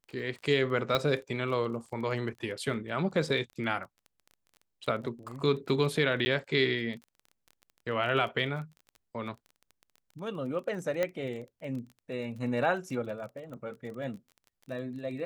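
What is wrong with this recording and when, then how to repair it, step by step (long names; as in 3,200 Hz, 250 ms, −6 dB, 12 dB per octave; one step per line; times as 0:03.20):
surface crackle 22 per second −40 dBFS
0:00.95: click −14 dBFS
0:06.25–0:06.26: drop-out 10 ms
0:11.03: click −16 dBFS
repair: click removal
repair the gap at 0:06.25, 10 ms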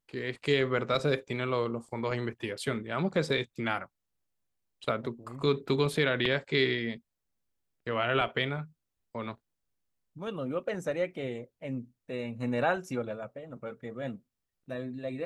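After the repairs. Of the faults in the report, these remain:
0:00.95: click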